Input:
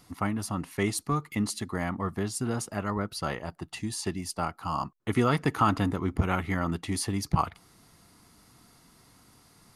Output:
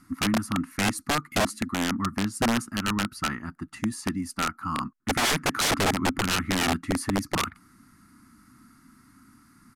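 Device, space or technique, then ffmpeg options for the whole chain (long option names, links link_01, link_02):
overflowing digital effects unit: -af "firequalizer=gain_entry='entry(160,0);entry(250,12);entry(490,-21);entry(1300,8);entry(3200,-11);entry(4700,-6);entry(13000,2)':delay=0.05:min_phase=1,aeval=exprs='(mod(7.94*val(0)+1,2)-1)/7.94':channel_layout=same,lowpass=12000"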